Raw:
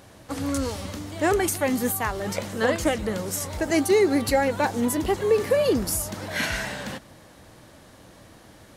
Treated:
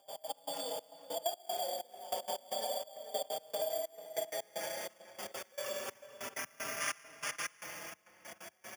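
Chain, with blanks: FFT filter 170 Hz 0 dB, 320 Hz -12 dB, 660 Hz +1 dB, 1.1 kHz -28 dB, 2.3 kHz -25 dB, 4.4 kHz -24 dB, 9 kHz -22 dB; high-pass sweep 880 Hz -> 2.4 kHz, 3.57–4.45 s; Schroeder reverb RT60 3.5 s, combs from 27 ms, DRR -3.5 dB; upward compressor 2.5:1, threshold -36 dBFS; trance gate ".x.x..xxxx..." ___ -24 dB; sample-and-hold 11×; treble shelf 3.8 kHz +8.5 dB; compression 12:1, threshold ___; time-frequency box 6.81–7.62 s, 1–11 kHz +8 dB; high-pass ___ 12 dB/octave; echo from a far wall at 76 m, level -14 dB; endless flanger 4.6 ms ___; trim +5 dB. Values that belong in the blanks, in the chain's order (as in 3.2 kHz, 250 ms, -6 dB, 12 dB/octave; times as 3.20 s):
191 bpm, -36 dBFS, 130 Hz, +0.3 Hz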